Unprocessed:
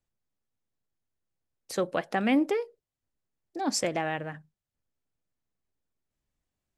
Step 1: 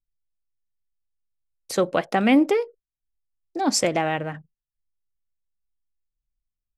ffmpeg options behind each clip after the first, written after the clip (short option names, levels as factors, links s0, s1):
-af "anlmdn=0.000398,bandreject=f=1700:w=14,volume=2.24"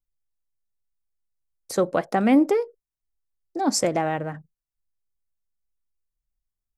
-af "equalizer=f=2900:t=o:w=1.1:g=-9.5"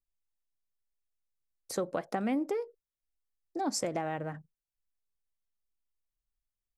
-af "acompressor=threshold=0.0708:ratio=4,volume=0.501"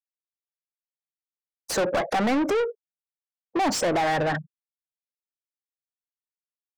-filter_complex "[0:a]afftfilt=real='re*gte(hypot(re,im),0.00398)':imag='im*gte(hypot(re,im),0.00398)':win_size=1024:overlap=0.75,asplit=2[s0][s1];[s1]highpass=f=720:p=1,volume=44.7,asoftclip=type=tanh:threshold=0.126[s2];[s0][s2]amix=inputs=2:normalize=0,lowpass=f=3400:p=1,volume=0.501,volume=1.26"